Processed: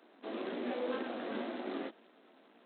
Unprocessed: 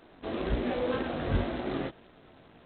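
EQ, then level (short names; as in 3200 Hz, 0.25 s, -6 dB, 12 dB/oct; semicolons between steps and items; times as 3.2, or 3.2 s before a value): steep high-pass 210 Hz 48 dB/oct; -6.0 dB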